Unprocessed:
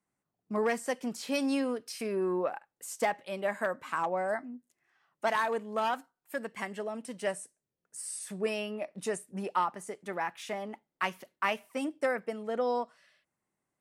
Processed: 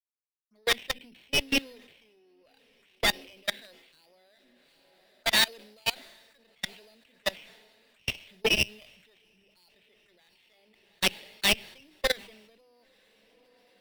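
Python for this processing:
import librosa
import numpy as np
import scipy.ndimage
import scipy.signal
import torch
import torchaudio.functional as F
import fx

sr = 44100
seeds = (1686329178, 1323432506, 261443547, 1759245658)

p1 = fx.peak_eq(x, sr, hz=3200.0, db=3.0, octaves=1.9)
p2 = fx.hum_notches(p1, sr, base_hz=50, count=6)
p3 = np.repeat(p2[::8], 8)[:len(p2)]
p4 = fx.weighting(p3, sr, curve='D')
p5 = 10.0 ** (-15.0 / 20.0) * np.tanh(p4 / 10.0 ** (-15.0 / 20.0))
p6 = p4 + F.gain(torch.from_numpy(p5), -10.5).numpy()
p7 = fx.env_phaser(p6, sr, low_hz=330.0, high_hz=1200.0, full_db=-30.0)
p8 = fx.cheby_harmonics(p7, sr, harmonics=(5, 6, 8), levels_db=(-18, -10, -34), full_scale_db=-6.0)
p9 = np.clip(p8, -10.0 ** (-11.0 / 20.0), 10.0 ** (-11.0 / 20.0))
p10 = p9 + fx.echo_diffused(p9, sr, ms=848, feedback_pct=61, wet_db=-13.0, dry=0)
p11 = fx.level_steps(p10, sr, step_db=22)
p12 = fx.band_widen(p11, sr, depth_pct=100)
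y = F.gain(torch.from_numpy(p12), -5.0).numpy()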